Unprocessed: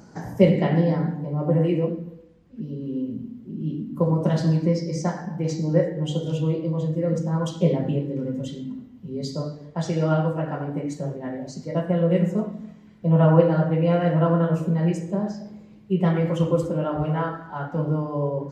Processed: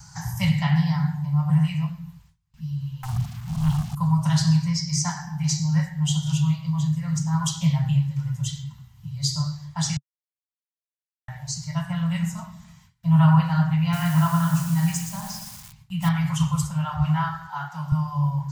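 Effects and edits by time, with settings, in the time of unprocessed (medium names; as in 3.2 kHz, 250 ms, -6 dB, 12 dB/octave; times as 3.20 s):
3.03–3.95 s: waveshaping leveller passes 3
9.97–11.28 s: mute
13.81–16.09 s: bit-crushed delay 119 ms, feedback 35%, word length 7-bit, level -8 dB
17.47–17.92 s: high-pass 250 Hz
whole clip: gate with hold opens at -40 dBFS; elliptic band-stop 140–880 Hz, stop band 50 dB; tone controls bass +6 dB, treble +13 dB; trim +3 dB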